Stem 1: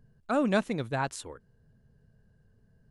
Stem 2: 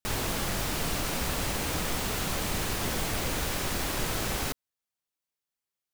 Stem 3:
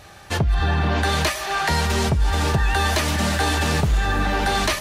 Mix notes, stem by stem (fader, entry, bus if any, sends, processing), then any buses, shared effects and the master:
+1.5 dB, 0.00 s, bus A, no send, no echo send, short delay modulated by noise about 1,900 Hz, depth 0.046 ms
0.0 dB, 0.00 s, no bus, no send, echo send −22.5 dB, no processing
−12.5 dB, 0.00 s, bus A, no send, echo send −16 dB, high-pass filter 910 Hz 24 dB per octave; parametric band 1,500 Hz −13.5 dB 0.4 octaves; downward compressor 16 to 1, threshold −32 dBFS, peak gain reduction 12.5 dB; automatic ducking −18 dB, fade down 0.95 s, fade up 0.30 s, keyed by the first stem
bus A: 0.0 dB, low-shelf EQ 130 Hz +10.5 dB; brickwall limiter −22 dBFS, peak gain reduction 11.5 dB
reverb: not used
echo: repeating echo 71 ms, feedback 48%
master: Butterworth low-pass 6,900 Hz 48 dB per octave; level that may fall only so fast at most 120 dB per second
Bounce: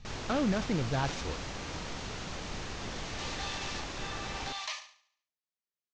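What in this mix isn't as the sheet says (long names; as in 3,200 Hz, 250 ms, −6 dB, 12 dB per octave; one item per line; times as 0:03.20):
stem 2 0.0 dB → −8.5 dB
stem 3: missing downward compressor 16 to 1, threshold −32 dBFS, peak gain reduction 12.5 dB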